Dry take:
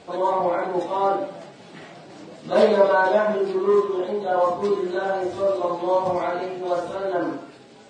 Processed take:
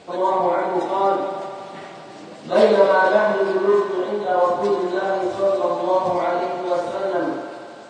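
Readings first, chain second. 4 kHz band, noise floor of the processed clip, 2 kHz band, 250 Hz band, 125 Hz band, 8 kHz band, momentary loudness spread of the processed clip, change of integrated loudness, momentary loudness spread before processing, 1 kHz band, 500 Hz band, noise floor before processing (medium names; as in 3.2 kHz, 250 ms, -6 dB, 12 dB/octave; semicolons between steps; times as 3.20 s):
+3.0 dB, -39 dBFS, +3.5 dB, +2.0 dB, +1.0 dB, no reading, 18 LU, +2.5 dB, 18 LU, +3.0 dB, +2.5 dB, -46 dBFS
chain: bass shelf 85 Hz -6.5 dB; thinning echo 82 ms, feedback 85%, high-pass 210 Hz, level -10.5 dB; trim +2 dB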